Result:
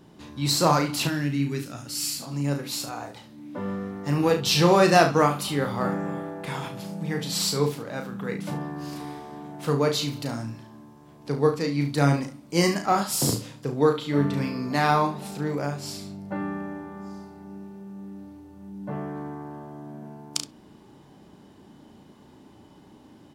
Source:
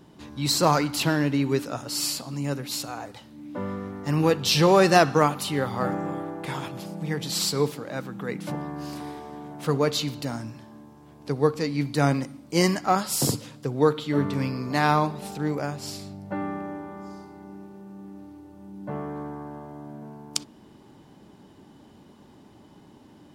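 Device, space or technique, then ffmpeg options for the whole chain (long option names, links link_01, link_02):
slapback doubling: -filter_complex "[0:a]asplit=3[link_01][link_02][link_03];[link_02]adelay=35,volume=-6dB[link_04];[link_03]adelay=71,volume=-12dB[link_05];[link_01][link_04][link_05]amix=inputs=3:normalize=0,asettb=1/sr,asplit=3[link_06][link_07][link_08];[link_06]atrim=end=1.074[link_09];[link_07]atrim=start=1.07:end=2.22,asetpts=PTS-STARTPTS,afade=type=in:duration=0.004:curve=qsin,afade=type=out:start_time=1.146:duration=0.004:curve=qsin,equalizer=frequency=500:width_type=o:width=1:gain=-11,equalizer=frequency=1000:width_type=o:width=1:gain=-9,equalizer=frequency=4000:width_type=o:width=1:gain=-3[link_10];[link_08]atrim=start=2.216[link_11];[link_09][link_10]acrossfade=duration=0.004:curve1=hsin:curve2=qsin[link_12];[link_12][link_11]acrossfade=duration=0.004:curve1=qsin:curve2=hsin,volume=-1dB"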